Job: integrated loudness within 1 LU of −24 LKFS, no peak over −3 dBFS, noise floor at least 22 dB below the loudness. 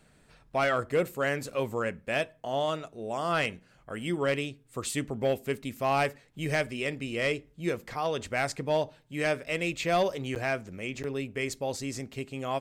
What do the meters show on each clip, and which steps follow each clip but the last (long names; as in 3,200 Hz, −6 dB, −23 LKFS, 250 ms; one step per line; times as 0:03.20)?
share of clipped samples 0.2%; peaks flattened at −19.0 dBFS; number of dropouts 2; longest dropout 8.8 ms; integrated loudness −31.0 LKFS; sample peak −19.0 dBFS; target loudness −24.0 LKFS
→ clipped peaks rebuilt −19 dBFS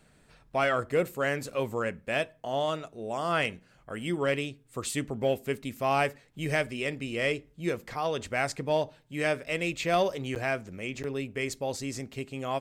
share of clipped samples 0.0%; number of dropouts 2; longest dropout 8.8 ms
→ repair the gap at 0:10.35/0:11.03, 8.8 ms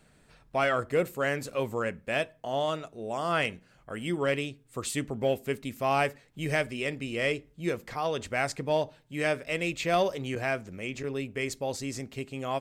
number of dropouts 0; integrated loudness −31.0 LKFS; sample peak −11.5 dBFS; target loudness −24.0 LKFS
→ level +7 dB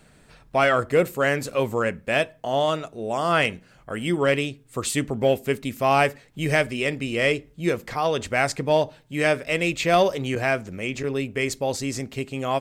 integrated loudness −24.0 LKFS; sample peak −4.5 dBFS; background noise floor −55 dBFS